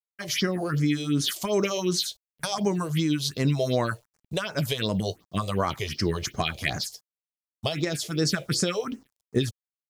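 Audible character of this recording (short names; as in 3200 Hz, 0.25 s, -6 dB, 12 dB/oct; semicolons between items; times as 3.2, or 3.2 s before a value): a quantiser's noise floor 10-bit, dither none; phasing stages 4, 2.7 Hz, lowest notch 230–3400 Hz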